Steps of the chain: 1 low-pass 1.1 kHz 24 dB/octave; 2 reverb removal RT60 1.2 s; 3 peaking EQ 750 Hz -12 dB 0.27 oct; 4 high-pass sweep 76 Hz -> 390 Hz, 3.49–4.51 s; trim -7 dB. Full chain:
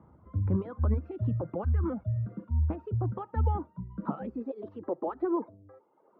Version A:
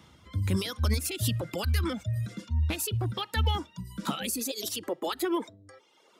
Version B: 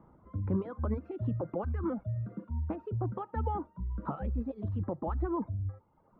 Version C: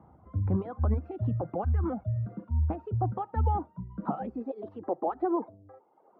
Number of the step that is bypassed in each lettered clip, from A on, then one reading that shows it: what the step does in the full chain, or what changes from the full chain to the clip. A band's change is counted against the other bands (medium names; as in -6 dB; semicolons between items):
1, 2 kHz band +16.0 dB; 4, crest factor change -1.5 dB; 3, 1 kHz band +5.5 dB